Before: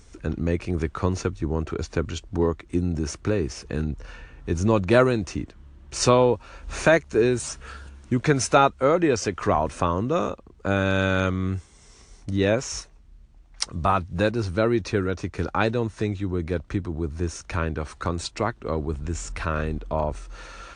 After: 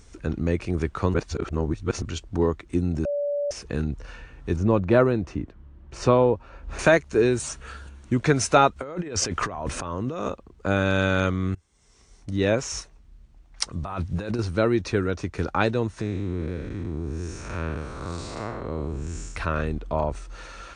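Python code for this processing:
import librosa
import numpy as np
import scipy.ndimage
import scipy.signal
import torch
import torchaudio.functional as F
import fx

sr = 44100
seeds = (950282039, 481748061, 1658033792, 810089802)

y = fx.lowpass(x, sr, hz=1300.0, slope=6, at=(4.56, 6.79))
y = fx.notch(y, sr, hz=5100.0, q=12.0, at=(7.43, 8.13))
y = fx.over_compress(y, sr, threshold_db=-30.0, ratio=-1.0, at=(8.76, 10.28))
y = fx.over_compress(y, sr, threshold_db=-29.0, ratio=-1.0, at=(13.83, 14.39))
y = fx.spec_blur(y, sr, span_ms=230.0, at=(16.01, 19.36))
y = fx.edit(y, sr, fx.reverse_span(start_s=1.14, length_s=0.88),
    fx.bleep(start_s=3.05, length_s=0.46, hz=577.0, db=-23.0),
    fx.fade_in_from(start_s=11.55, length_s=1.03, floor_db=-23.5), tone=tone)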